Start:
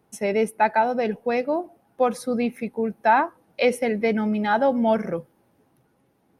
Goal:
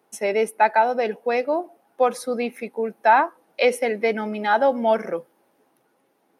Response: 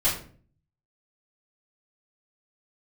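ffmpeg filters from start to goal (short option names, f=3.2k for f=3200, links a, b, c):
-af "highpass=350,volume=2.5dB"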